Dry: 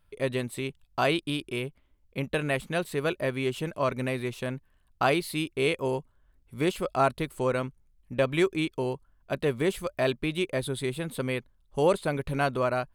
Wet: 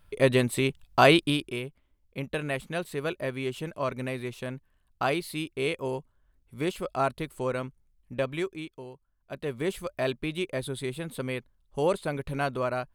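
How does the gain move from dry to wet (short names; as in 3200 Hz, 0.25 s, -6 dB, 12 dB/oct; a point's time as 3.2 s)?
1.21 s +7 dB
1.63 s -3 dB
8.16 s -3 dB
8.92 s -14.5 dB
9.71 s -2.5 dB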